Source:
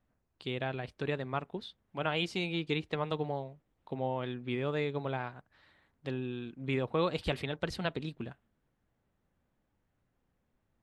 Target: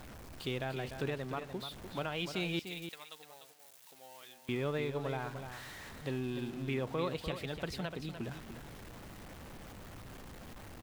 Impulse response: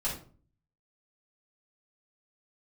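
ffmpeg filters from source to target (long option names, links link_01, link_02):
-filter_complex "[0:a]aeval=exprs='val(0)+0.5*0.0075*sgn(val(0))':channel_layout=same,asettb=1/sr,asplit=3[link_01][link_02][link_03];[link_01]atrim=end=2.594[link_04];[link_02]atrim=start=2.59:end=4.49,asetpts=PTS-STARTPTS,afade=type=in:duration=0.004:curve=qsin,afade=type=out:start_time=1.896:duration=0.004:curve=qsin,aderivative[link_05];[link_03]atrim=start=4.486[link_06];[link_04][link_05]acrossfade=duration=0.004:curve1=hsin:curve2=qsin[link_07];[link_07][link_06]acrossfade=duration=0.004:curve1=qsin:curve2=hsin,alimiter=limit=-24dB:level=0:latency=1:release=447,aecho=1:1:297:0.355,volume=-1dB"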